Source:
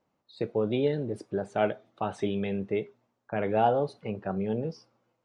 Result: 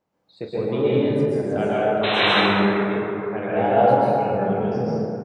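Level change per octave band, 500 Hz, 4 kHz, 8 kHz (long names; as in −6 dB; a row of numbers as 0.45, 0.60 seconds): +9.0 dB, +20.5 dB, can't be measured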